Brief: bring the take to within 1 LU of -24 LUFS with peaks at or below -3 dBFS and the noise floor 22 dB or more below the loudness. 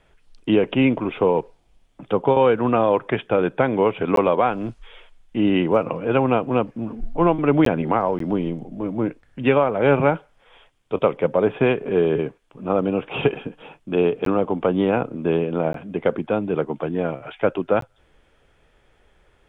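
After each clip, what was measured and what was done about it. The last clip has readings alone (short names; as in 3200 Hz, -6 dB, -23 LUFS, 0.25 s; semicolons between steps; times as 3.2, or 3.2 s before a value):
dropouts 6; longest dropout 13 ms; loudness -21.5 LUFS; peak -4.0 dBFS; loudness target -24.0 LUFS
-> interpolate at 4.16/7.65/8.19/14.25/15.73/17.81, 13 ms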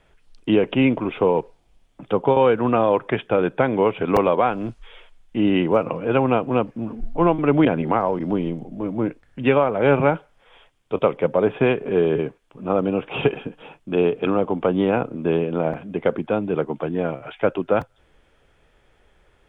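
dropouts 0; loudness -21.5 LUFS; peak -4.0 dBFS; loudness target -24.0 LUFS
-> gain -2.5 dB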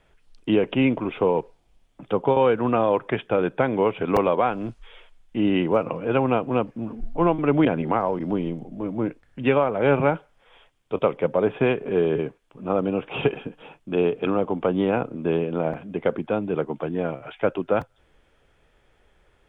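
loudness -24.0 LUFS; peak -6.5 dBFS; noise floor -63 dBFS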